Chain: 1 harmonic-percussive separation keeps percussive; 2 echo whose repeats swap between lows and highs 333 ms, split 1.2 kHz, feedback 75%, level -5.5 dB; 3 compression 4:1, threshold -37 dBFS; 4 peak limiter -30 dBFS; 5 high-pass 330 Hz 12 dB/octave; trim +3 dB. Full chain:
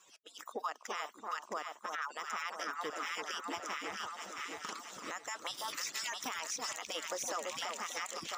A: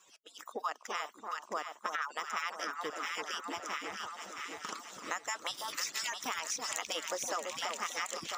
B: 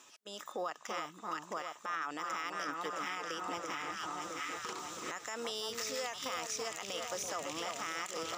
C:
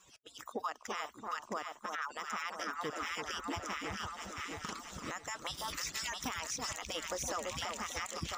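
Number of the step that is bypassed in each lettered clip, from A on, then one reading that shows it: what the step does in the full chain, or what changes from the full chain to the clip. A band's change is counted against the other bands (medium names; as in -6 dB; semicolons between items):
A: 4, crest factor change +6.0 dB; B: 1, 125 Hz band +6.5 dB; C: 5, 125 Hz band +15.5 dB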